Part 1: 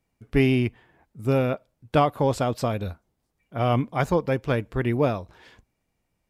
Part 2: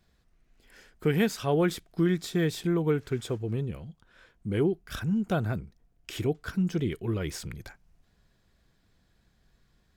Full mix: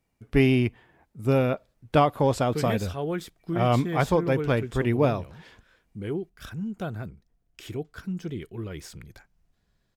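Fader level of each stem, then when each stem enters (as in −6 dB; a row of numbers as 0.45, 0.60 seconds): 0.0, −5.0 decibels; 0.00, 1.50 seconds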